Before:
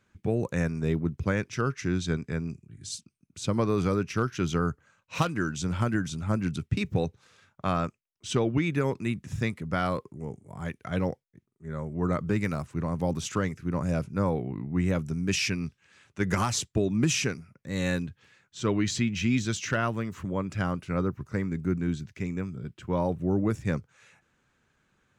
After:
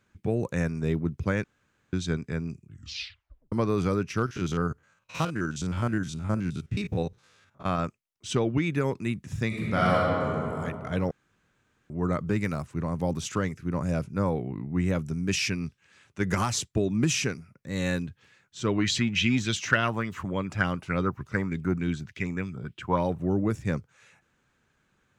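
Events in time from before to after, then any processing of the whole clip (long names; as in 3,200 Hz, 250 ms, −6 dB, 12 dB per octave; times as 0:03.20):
0:01.44–0:01.93: fill with room tone
0:02.66: tape stop 0.86 s
0:04.26–0:07.79: spectrum averaged block by block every 50 ms
0:09.47–0:10.55: thrown reverb, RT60 2.5 s, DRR −6 dB
0:11.11–0:11.90: fill with room tone
0:18.78–0:23.33: auto-filter bell 3.4 Hz 760–3,500 Hz +13 dB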